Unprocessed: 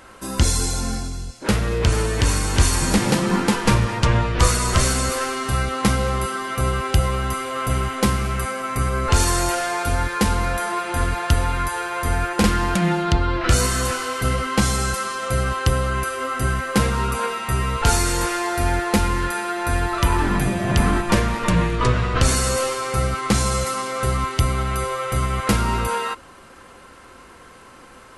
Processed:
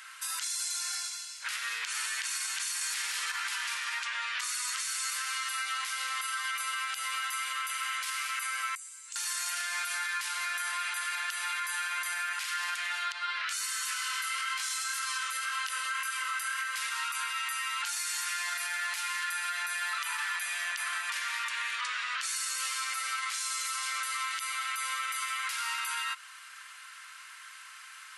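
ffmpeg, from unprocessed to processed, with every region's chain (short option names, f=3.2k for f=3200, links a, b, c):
-filter_complex "[0:a]asettb=1/sr,asplit=3[a][b][c];[a]atrim=end=2.814[d];[b]atrim=start=2.81:end=3.32,asetpts=PTS-STARTPTS,afade=t=in:d=0.004:c=qsin,afade=t=out:st=0.506:d=0.004:c=qsin,equalizer=f=100:w=0.37:g=-7,acontrast=80,aeval=exprs='val(0)+0.141*sin(2*PI*460*n/s)':c=same[e];[c]atrim=start=3.316[f];[d][e]acrossfade=d=0.004:c1=hsin:c2=qsin[g];[g][f]acrossfade=d=0.004:c1=qsin:c2=hsin,asettb=1/sr,asplit=3[h][i][j];[h]atrim=end=8.754[k];[i]atrim=start=8.75:end=9.16,asetpts=PTS-STARTPTS,afade=t=in:d=0.004:c=qsin,afade=t=out:st=0.406:d=0.004:c=qsin,bandpass=f=7.7k:t=q:w=5.1,acompressor=threshold=-45dB:ratio=2:attack=3.2:release=140:knee=1:detection=peak[l];[j]atrim=start=9.156[m];[k][l]acrossfade=d=0.004:c1=hsin:c2=qsin[n];[n][m]acrossfade=d=0.004:c1=qsin:c2=hsin,asettb=1/sr,asplit=3[o][p][q];[o]atrim=end=14.044[r];[p]atrim=start=14.04:end=16.64,asetpts=PTS-STARTPTS,afade=t=in:d=0.004:c=qsin,afade=t=out:st=2.596:d=0.004:c=qsin,acontrast=50,flanger=delay=20:depth=4.5:speed=1.9[s];[q]atrim=start=16.636[t];[r][s]acrossfade=d=0.004:c1=hsin:c2=qsin[u];[u][t]acrossfade=d=0.004:c1=qsin:c2=hsin,highpass=f=1.5k:w=0.5412,highpass=f=1.5k:w=1.3066,acompressor=threshold=-32dB:ratio=3,alimiter=level_in=3dB:limit=-24dB:level=0:latency=1:release=38,volume=-3dB,volume=2.5dB"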